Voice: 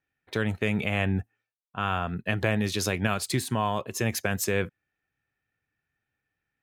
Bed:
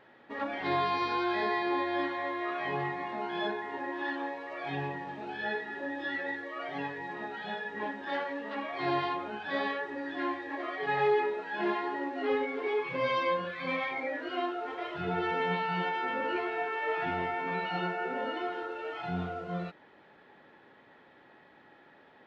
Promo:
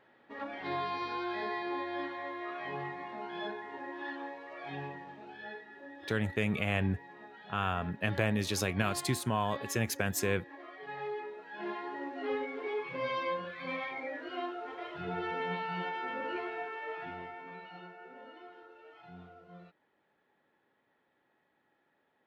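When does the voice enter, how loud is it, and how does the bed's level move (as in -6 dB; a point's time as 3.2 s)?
5.75 s, -4.5 dB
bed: 4.85 s -6 dB
5.67 s -12.5 dB
11.21 s -12.5 dB
12.05 s -5 dB
16.48 s -5 dB
17.88 s -17 dB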